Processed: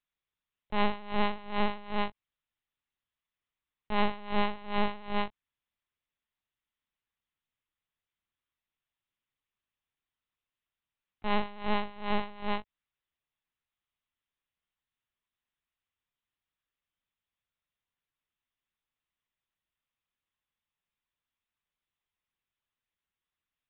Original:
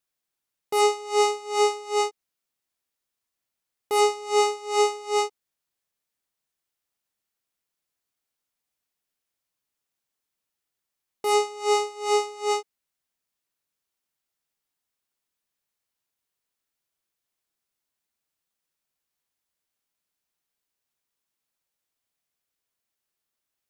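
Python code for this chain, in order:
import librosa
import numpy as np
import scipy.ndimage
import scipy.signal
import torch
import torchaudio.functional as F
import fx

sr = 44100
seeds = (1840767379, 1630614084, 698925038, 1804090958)

y = fx.peak_eq(x, sr, hz=280.0, db=-6.5, octaves=2.8)
y = fx.lpc_vocoder(y, sr, seeds[0], excitation='pitch_kept', order=8)
y = y * librosa.db_to_amplitude(-1.5)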